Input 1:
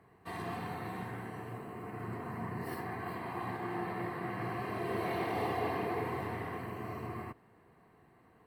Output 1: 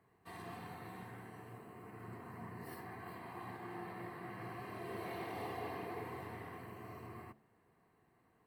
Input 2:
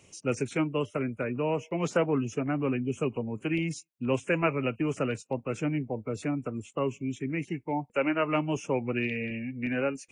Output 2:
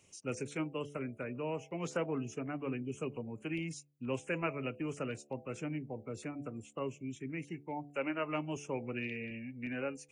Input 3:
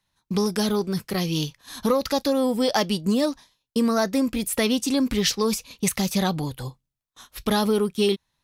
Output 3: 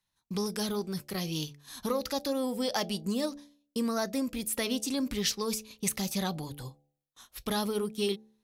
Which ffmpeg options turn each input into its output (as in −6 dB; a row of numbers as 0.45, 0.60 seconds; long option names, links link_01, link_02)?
-af "highshelf=frequency=4700:gain=5,bandreject=frequency=72.23:width_type=h:width=4,bandreject=frequency=144.46:width_type=h:width=4,bandreject=frequency=216.69:width_type=h:width=4,bandreject=frequency=288.92:width_type=h:width=4,bandreject=frequency=361.15:width_type=h:width=4,bandreject=frequency=433.38:width_type=h:width=4,bandreject=frequency=505.61:width_type=h:width=4,bandreject=frequency=577.84:width_type=h:width=4,bandreject=frequency=650.07:width_type=h:width=4,bandreject=frequency=722.3:width_type=h:width=4,bandreject=frequency=794.53:width_type=h:width=4,volume=-9dB"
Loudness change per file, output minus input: −9.0, −9.0, −8.5 LU